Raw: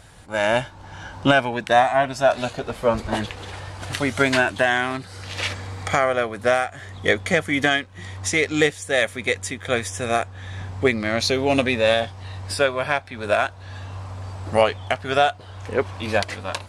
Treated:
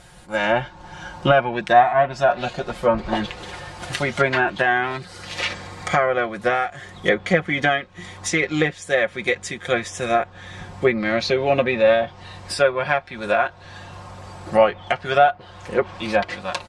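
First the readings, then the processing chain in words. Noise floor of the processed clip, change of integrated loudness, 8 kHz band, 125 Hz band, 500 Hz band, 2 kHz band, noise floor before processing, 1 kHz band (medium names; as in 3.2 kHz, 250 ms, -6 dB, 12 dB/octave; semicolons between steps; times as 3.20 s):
-44 dBFS, +1.0 dB, -3.0 dB, -1.0 dB, +1.5 dB, 0.0 dB, -42 dBFS, +2.5 dB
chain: comb 5.6 ms, depth 68%; low-pass that closes with the level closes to 2.1 kHz, closed at -14 dBFS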